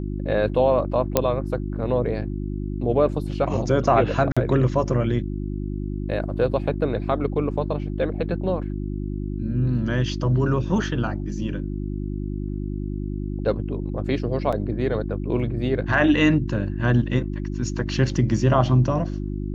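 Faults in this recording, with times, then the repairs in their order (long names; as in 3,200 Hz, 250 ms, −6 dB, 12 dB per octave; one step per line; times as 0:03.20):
mains hum 50 Hz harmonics 7 −28 dBFS
0:01.17: click −3 dBFS
0:04.32–0:04.37: drop-out 46 ms
0:14.52–0:14.53: drop-out 6.1 ms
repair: click removal
hum removal 50 Hz, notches 7
repair the gap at 0:04.32, 46 ms
repair the gap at 0:14.52, 6.1 ms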